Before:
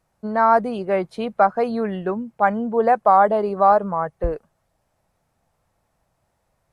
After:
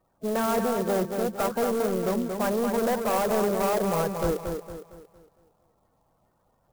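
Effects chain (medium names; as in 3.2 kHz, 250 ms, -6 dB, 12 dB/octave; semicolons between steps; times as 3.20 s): coarse spectral quantiser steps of 30 dB; dynamic bell 490 Hz, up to +5 dB, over -32 dBFS, Q 1.6; in parallel at -3 dB: compressor with a negative ratio -19 dBFS; on the sum: saturation -17 dBFS, distortion -7 dB; distance through air 350 m; bucket-brigade echo 229 ms, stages 4096, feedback 40%, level -5.5 dB; sampling jitter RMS 0.049 ms; trim -4.5 dB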